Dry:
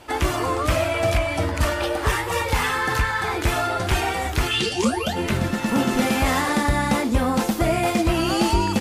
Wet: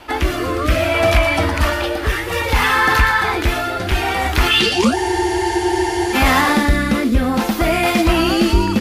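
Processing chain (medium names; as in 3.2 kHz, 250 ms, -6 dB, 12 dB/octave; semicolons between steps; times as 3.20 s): graphic EQ 125/500/8000 Hz -10/-5/-9 dB; in parallel at -2.5 dB: peak limiter -18 dBFS, peak gain reduction 7.5 dB; on the sum: rotary cabinet horn 0.6 Hz; on a send: feedback echo behind a high-pass 118 ms, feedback 32%, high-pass 5.1 kHz, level -6 dB; on the sum: spectral freeze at 4.96 s, 1.18 s; trim +6.5 dB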